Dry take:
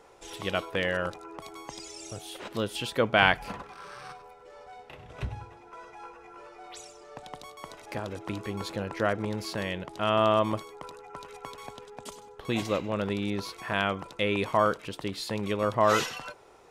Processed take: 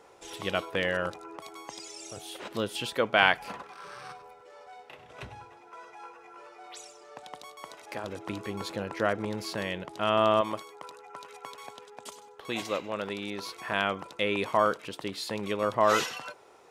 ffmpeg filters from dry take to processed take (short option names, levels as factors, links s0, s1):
-af "asetnsamples=n=441:p=0,asendcmd='1.36 highpass f 320;2.17 highpass f 130;2.95 highpass f 340;3.83 highpass f 97;4.41 highpass f 410;8.04 highpass f 140;10.41 highpass f 500;13.42 highpass f 220',highpass=f=100:p=1"